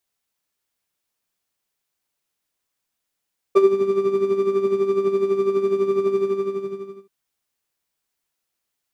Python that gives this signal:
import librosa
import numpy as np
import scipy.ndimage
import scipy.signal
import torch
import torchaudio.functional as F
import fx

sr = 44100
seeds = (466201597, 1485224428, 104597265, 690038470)

y = fx.sub_patch_tremolo(sr, seeds[0], note=67, wave='triangle', wave2='saw', interval_st=19, detune_cents=5, level2_db=-2.5, sub_db=-24.5, noise_db=-9.5, kind='bandpass', cutoff_hz=200.0, q=2.0, env_oct=1.5, env_decay_s=0.18, env_sustain_pct=20, attack_ms=17.0, decay_s=0.06, sustain_db=-3.5, release_s=0.9, note_s=2.63, lfo_hz=12.0, tremolo_db=9.0)